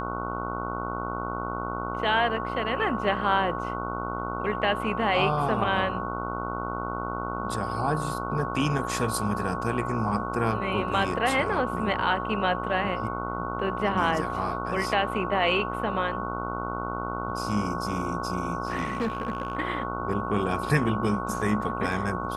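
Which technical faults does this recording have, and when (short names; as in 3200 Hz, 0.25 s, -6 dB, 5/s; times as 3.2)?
buzz 60 Hz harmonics 25 -33 dBFS
tone 1100 Hz -33 dBFS
18.85–19.55 clipped -23 dBFS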